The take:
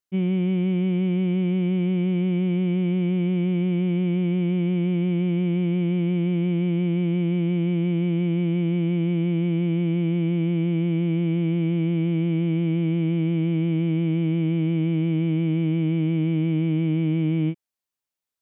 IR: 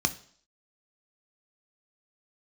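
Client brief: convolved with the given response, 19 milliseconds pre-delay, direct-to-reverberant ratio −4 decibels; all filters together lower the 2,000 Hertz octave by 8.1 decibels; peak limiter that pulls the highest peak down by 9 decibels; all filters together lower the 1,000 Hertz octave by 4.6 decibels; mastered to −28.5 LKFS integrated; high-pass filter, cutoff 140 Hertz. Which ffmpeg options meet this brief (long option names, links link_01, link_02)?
-filter_complex "[0:a]highpass=140,equalizer=frequency=1000:width_type=o:gain=-5,equalizer=frequency=2000:width_type=o:gain=-9,alimiter=level_in=2.5dB:limit=-24dB:level=0:latency=1,volume=-2.5dB,asplit=2[link_01][link_02];[1:a]atrim=start_sample=2205,adelay=19[link_03];[link_02][link_03]afir=irnorm=-1:irlink=0,volume=-4.5dB[link_04];[link_01][link_04]amix=inputs=2:normalize=0,volume=-5dB"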